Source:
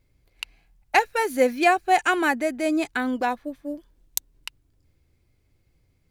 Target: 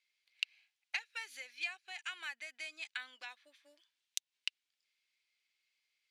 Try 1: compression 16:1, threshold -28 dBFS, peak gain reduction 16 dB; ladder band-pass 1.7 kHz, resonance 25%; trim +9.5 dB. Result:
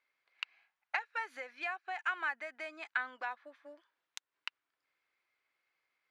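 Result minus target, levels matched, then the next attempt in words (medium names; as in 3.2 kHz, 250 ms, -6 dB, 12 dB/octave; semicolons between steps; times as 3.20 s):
4 kHz band -9.0 dB
compression 16:1, threshold -28 dBFS, peak gain reduction 16 dB; ladder band-pass 3.6 kHz, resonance 25%; trim +9.5 dB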